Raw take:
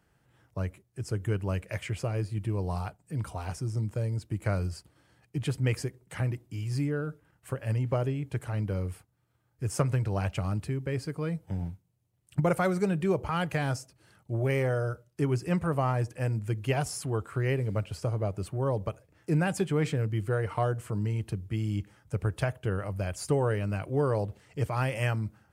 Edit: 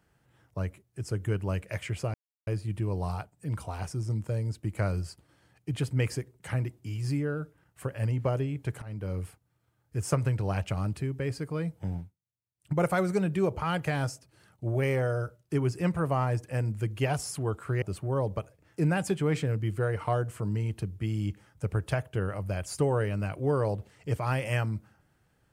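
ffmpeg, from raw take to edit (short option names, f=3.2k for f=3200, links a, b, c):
-filter_complex "[0:a]asplit=6[a][b][c][d][e][f];[a]atrim=end=2.14,asetpts=PTS-STARTPTS,afade=t=out:st=2.136:d=0.004:c=hsin,apad=pad_dur=0.33[g];[b]atrim=start=2.14:end=8.49,asetpts=PTS-STARTPTS,afade=t=in:d=0.004:c=hsin,afade=t=out:st=6.346:d=0.004:c=hsin:silence=0.199526[h];[c]atrim=start=8.49:end=11.85,asetpts=PTS-STARTPTS,afade=t=in:d=0.39:silence=0.199526,afade=t=out:st=3.1:d=0.26:silence=0.0794328[i];[d]atrim=start=11.85:end=12.23,asetpts=PTS-STARTPTS,volume=-22dB[j];[e]atrim=start=12.23:end=17.492,asetpts=PTS-STARTPTS,afade=t=in:d=0.26:silence=0.0794328[k];[f]atrim=start=18.318[l];[g][h][i][j][k]concat=n=5:v=0:a=1[m];[m][l]acrossfade=d=0.004:c1=hsin:c2=hsin"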